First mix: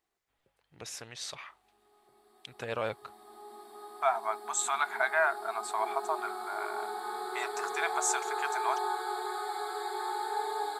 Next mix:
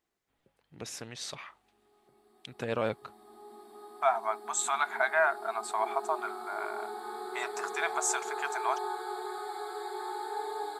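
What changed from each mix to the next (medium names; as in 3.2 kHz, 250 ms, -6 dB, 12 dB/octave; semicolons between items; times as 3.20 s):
background -4.5 dB; master: add peaking EQ 220 Hz +9 dB 1.8 oct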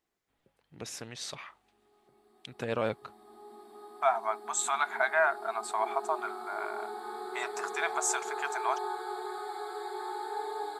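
background: add treble shelf 6.7 kHz -4 dB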